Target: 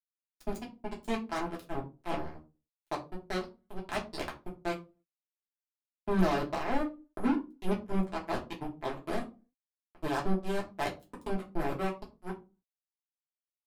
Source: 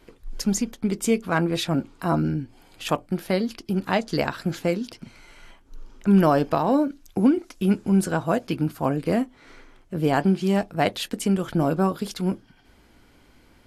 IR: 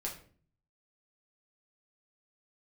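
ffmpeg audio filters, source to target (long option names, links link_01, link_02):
-filter_complex "[0:a]acrusher=bits=2:mix=0:aa=0.5[link_01];[1:a]atrim=start_sample=2205,asetrate=88200,aresample=44100[link_02];[link_01][link_02]afir=irnorm=-1:irlink=0,volume=-6dB"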